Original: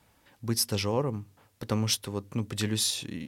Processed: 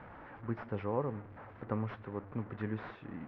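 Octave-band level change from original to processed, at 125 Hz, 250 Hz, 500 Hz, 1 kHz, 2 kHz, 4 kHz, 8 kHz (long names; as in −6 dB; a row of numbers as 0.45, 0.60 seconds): −8.0 dB, −7.0 dB, −5.5 dB, −3.5 dB, −7.0 dB, below −30 dB, below −40 dB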